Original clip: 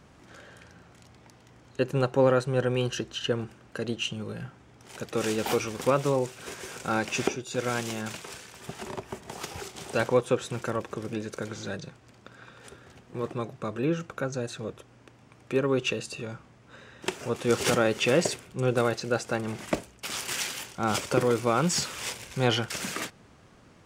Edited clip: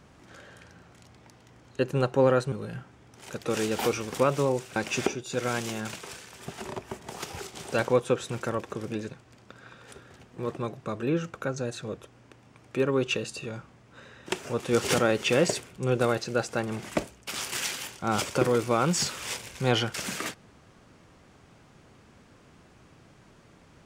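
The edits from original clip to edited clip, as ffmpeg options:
-filter_complex "[0:a]asplit=4[s0][s1][s2][s3];[s0]atrim=end=2.522[s4];[s1]atrim=start=4.188:end=6.432[s5];[s2]atrim=start=6.968:end=11.312[s6];[s3]atrim=start=11.858[s7];[s4][s5]acrossfade=d=0.004:c1=hsin:c2=hsin[s8];[s8][s6]acrossfade=d=0.004:c1=hsin:c2=hsin[s9];[s9][s7]acrossfade=d=0.004:c1=hsin:c2=hsin"

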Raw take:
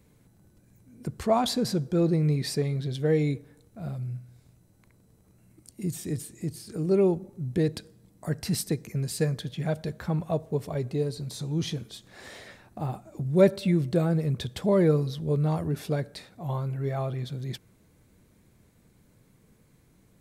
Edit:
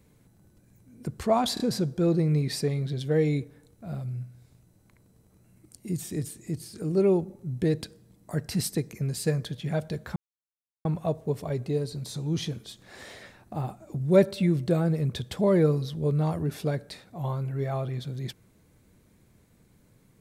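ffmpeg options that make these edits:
-filter_complex "[0:a]asplit=4[s0][s1][s2][s3];[s0]atrim=end=1.572[s4];[s1]atrim=start=1.538:end=1.572[s5];[s2]atrim=start=1.538:end=10.1,asetpts=PTS-STARTPTS,afade=t=out:st=8.558:d=0.004:c=hsin,apad=pad_dur=0.69[s6];[s3]atrim=start=10.1,asetpts=PTS-STARTPTS,afade=t=in:d=0.004:c=hsin[s7];[s4][s5]acrossfade=d=0.004:c1=hsin:c2=hsin[s8];[s6][s7]concat=n=2:v=0:a=1[s9];[s8][s9]acrossfade=d=0.004:c1=hsin:c2=hsin"

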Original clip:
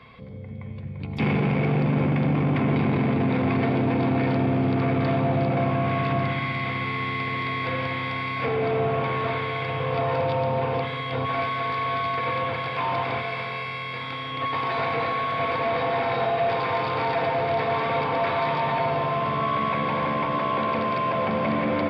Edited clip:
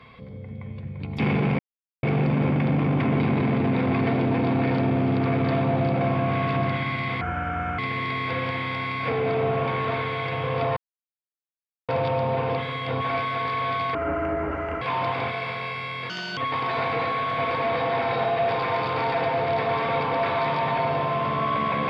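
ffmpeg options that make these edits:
-filter_complex "[0:a]asplit=9[s0][s1][s2][s3][s4][s5][s6][s7][s8];[s0]atrim=end=1.59,asetpts=PTS-STARTPTS,afade=t=out:st=1.586:d=0.004:c=hsin,apad=pad_dur=0.44[s9];[s1]atrim=start=1.59:end=6.774,asetpts=PTS-STARTPTS,afade=t=in:d=0.004:c=hsin[s10];[s2]atrim=start=6.77:end=7.15,asetpts=PTS-STARTPTS,asetrate=29106,aresample=44100[s11];[s3]atrim=start=7.146:end=10.13,asetpts=PTS-STARTPTS,afade=t=out:st=2.98:d=0.004:c=hsin,apad=pad_dur=1.12[s12];[s4]atrim=start=10.13:end=12.194,asetpts=PTS-STARTPTS,afade=t=in:d=0.004:c=hsin[s13];[s5]atrim=start=12.19:end=12.72,asetpts=PTS-STARTPTS,asetrate=26901,aresample=44100,atrim=end_sample=38316,asetpts=PTS-STARTPTS[s14];[s6]atrim=start=12.716:end=14.004[s15];[s7]atrim=start=14:end=14.38,asetpts=PTS-STARTPTS,asetrate=60417,aresample=44100,atrim=end_sample=12232,asetpts=PTS-STARTPTS[s16];[s8]atrim=start=14.376[s17];[s9][s10]concat=n=2:v=0:a=1[s18];[s18][s11]acrossfade=d=0.004:c1=hsin:c2=hsin[s19];[s12][s13]concat=n=2:v=0:a=1[s20];[s19][s20]acrossfade=d=0.004:c1=hsin:c2=hsin[s21];[s21][s14]acrossfade=d=0.004:c1=hsin:c2=hsin[s22];[s22][s15]acrossfade=d=0.004:c1=hsin:c2=hsin[s23];[s23][s16]acrossfade=d=0.004:c1=hsin:c2=hsin[s24];[s24][s17]acrossfade=d=0.004:c1=hsin:c2=hsin"

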